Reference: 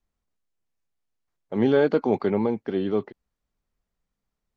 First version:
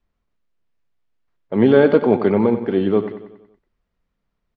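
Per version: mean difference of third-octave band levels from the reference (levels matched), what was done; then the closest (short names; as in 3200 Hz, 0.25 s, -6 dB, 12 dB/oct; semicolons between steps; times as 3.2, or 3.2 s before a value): 2.5 dB: LPF 3500 Hz 12 dB/oct; notch 790 Hz, Q 14; on a send: feedback echo 93 ms, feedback 52%, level -11.5 dB; on the sum: gain +7 dB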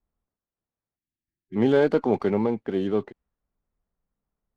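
1.0 dB: low-pass opened by the level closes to 1400 Hz, open at -17 dBFS; spectral delete 0.97–1.56, 380–1600 Hz; running maximum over 3 samples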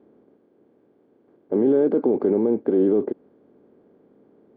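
6.0 dB: per-bin compression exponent 0.6; limiter -15.5 dBFS, peak gain reduction 9 dB; band-pass 340 Hz, Q 2; gain +8.5 dB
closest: second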